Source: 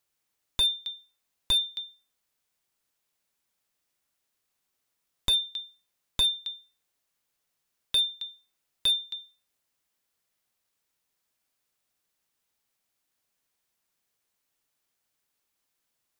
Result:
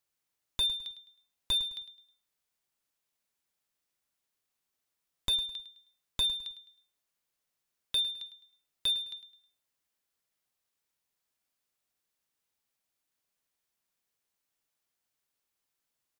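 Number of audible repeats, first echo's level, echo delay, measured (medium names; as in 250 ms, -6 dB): 3, -14.0 dB, 105 ms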